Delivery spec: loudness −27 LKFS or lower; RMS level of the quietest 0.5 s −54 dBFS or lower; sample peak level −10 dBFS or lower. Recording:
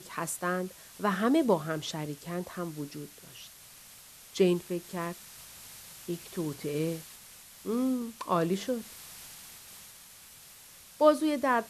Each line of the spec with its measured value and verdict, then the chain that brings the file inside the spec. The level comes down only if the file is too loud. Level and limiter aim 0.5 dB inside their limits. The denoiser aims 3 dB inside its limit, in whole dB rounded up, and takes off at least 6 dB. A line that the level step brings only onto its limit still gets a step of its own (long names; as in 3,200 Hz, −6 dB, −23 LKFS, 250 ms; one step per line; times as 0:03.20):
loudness −31.0 LKFS: in spec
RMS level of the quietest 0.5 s −53 dBFS: out of spec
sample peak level −9.0 dBFS: out of spec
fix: broadband denoise 6 dB, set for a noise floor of −53 dBFS
brickwall limiter −10.5 dBFS